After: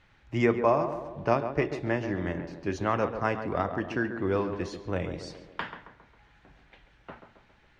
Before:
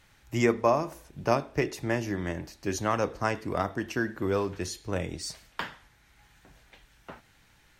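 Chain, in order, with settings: LPF 3200 Hz 12 dB/oct; tape echo 0.137 s, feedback 59%, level -7 dB, low-pass 1300 Hz

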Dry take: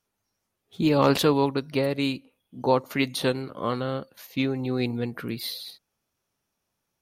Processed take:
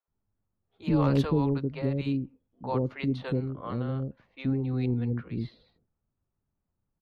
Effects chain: RIAA curve playback; low-pass opened by the level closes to 1500 Hz, open at -12 dBFS; bands offset in time highs, lows 80 ms, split 530 Hz; gain -8 dB

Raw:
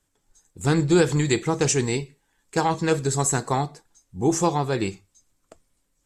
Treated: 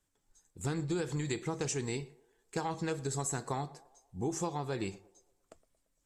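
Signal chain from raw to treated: compressor 5:1, threshold -24 dBFS, peak gain reduction 10 dB; narrowing echo 0.114 s, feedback 55%, band-pass 640 Hz, level -18.5 dB; gain -7.5 dB

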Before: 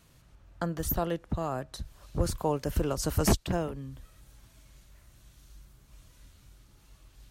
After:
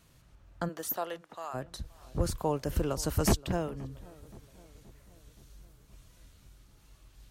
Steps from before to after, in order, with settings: 0.68–1.53 HPF 330 Hz -> 1000 Hz 12 dB/oct; darkening echo 0.524 s, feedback 57%, low-pass 1600 Hz, level -21 dB; gain -1.5 dB

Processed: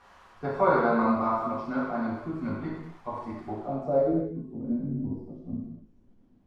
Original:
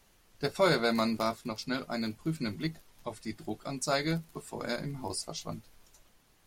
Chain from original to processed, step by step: switching spikes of -30 dBFS; low-pass sweep 1100 Hz -> 260 Hz, 3.5–4.31; non-linear reverb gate 0.33 s falling, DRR -7 dB; gain -5.5 dB

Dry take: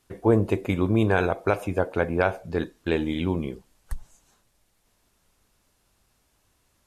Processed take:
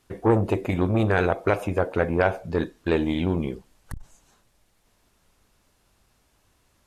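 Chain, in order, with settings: high shelf 5700 Hz -4.5 dB; core saturation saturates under 580 Hz; gain +3.5 dB

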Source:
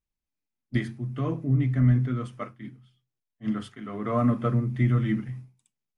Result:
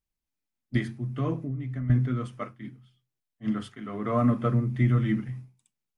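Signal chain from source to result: 1.42–1.9 compressor 5:1, threshold -31 dBFS, peak gain reduction 13.5 dB

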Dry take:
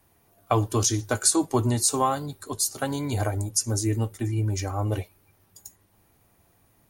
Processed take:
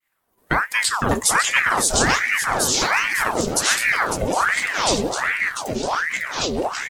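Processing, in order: on a send: echo 0.552 s -8 dB; on the sum: echoes that change speed 0.376 s, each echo -4 st, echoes 3; expander -54 dBFS; ring modulator with a swept carrier 1200 Hz, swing 75%, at 1.3 Hz; gain +5 dB

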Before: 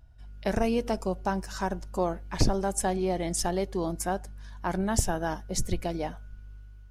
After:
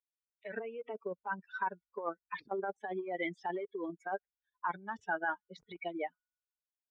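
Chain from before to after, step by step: per-bin expansion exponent 3; negative-ratio compressor -40 dBFS, ratio -1; speaker cabinet 440–2700 Hz, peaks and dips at 450 Hz +7 dB, 660 Hz -5 dB, 970 Hz +5 dB, 1500 Hz +4 dB, 2200 Hz +3 dB; gain +4.5 dB

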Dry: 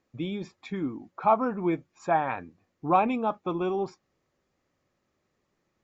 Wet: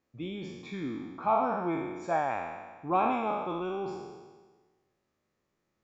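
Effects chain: spectral trails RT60 1.40 s; gain -7 dB

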